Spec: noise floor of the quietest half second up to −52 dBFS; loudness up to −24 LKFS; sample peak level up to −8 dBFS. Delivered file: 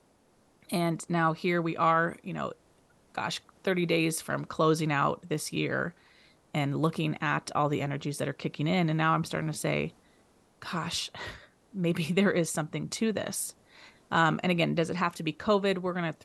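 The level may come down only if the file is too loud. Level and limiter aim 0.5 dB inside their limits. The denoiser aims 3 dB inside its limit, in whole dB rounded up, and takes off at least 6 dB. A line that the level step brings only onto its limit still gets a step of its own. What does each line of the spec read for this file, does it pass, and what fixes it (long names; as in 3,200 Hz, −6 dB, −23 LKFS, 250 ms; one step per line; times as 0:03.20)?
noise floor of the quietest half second −65 dBFS: in spec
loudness −29.5 LKFS: in spec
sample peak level −11.5 dBFS: in spec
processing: no processing needed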